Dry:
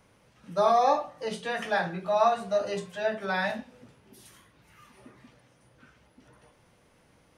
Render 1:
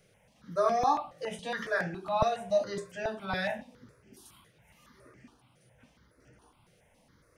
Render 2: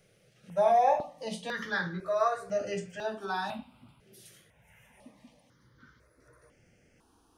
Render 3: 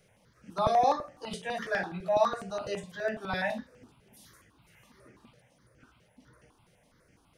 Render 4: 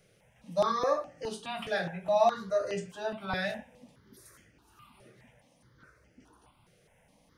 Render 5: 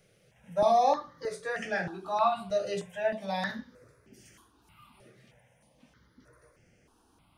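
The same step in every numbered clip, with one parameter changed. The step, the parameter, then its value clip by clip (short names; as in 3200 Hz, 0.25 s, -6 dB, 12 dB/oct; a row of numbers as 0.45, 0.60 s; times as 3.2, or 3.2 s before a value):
step phaser, rate: 7.2, 2, 12, 4.8, 3.2 Hz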